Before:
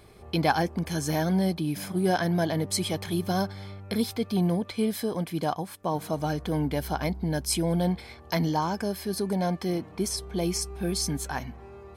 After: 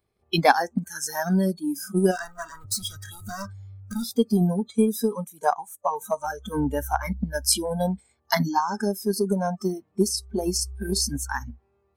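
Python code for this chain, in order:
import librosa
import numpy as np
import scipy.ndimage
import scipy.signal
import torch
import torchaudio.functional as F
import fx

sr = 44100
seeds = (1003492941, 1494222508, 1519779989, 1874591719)

y = fx.clip_hard(x, sr, threshold_db=-30.5, at=(2.11, 4.05))
y = fx.noise_reduce_blind(y, sr, reduce_db=28)
y = fx.transient(y, sr, attack_db=6, sustain_db=1)
y = F.gain(torch.from_numpy(y), 3.5).numpy()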